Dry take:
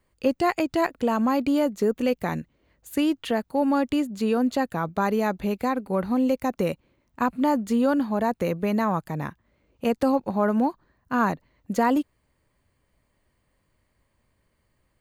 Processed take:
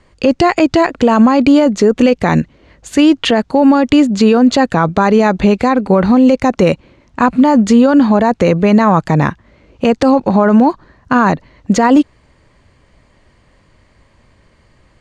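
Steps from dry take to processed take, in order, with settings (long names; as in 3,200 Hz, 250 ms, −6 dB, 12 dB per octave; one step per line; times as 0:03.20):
low-pass filter 7,200 Hz 24 dB per octave
boost into a limiter +20.5 dB
level −1 dB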